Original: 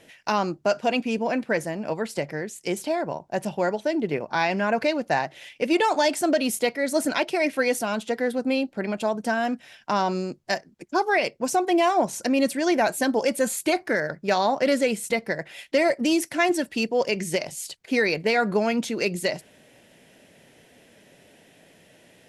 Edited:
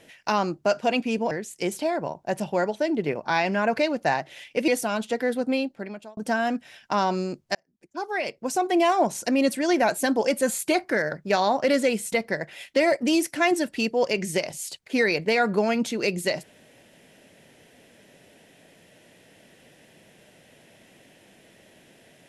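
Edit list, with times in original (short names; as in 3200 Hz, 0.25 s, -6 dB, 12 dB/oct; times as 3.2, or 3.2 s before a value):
1.31–2.36 cut
5.73–7.66 cut
8.46–9.15 fade out linear
10.53–11.81 fade in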